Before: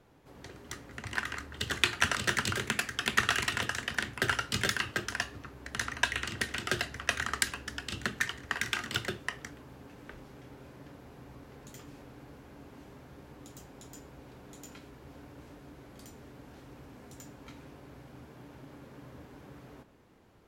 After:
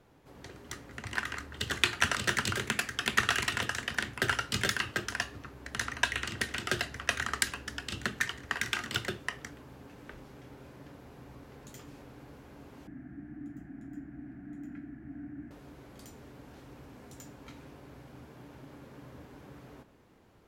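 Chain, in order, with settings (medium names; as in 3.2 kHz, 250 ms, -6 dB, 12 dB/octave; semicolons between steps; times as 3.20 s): 12.87–15.51 s: FFT filter 110 Hz 0 dB, 310 Hz +12 dB, 480 Hz -26 dB, 690 Hz -1 dB, 990 Hz -18 dB, 1.7 kHz +4 dB, 3.7 kHz -26 dB, 8.4 kHz -21 dB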